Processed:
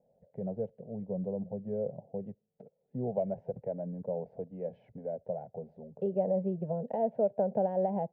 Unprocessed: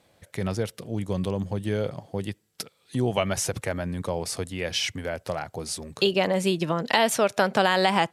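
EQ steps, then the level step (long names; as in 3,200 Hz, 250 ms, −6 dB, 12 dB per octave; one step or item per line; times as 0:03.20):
transistor ladder low-pass 800 Hz, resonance 30%
phaser with its sweep stopped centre 320 Hz, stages 6
0.0 dB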